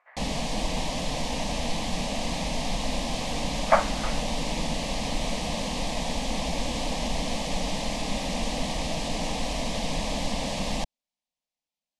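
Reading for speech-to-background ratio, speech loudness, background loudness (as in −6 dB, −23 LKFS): 3.0 dB, −27.0 LKFS, −30.0 LKFS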